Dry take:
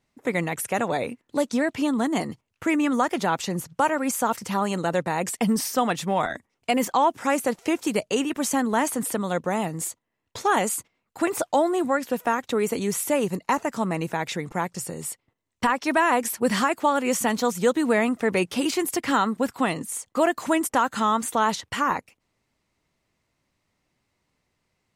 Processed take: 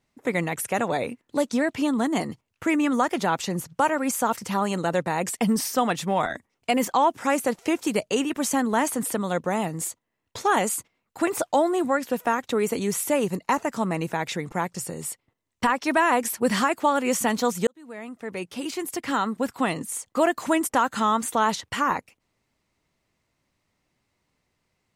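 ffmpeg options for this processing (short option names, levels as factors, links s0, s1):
-filter_complex "[0:a]asplit=2[s0][s1];[s0]atrim=end=17.67,asetpts=PTS-STARTPTS,afade=t=out:st=17.666:d=0.004:c=hsin[s2];[s1]atrim=start=17.67,asetpts=PTS-STARTPTS,afade=t=in:d=2.15[s3];[s2][s3]concat=n=2:v=0:a=1"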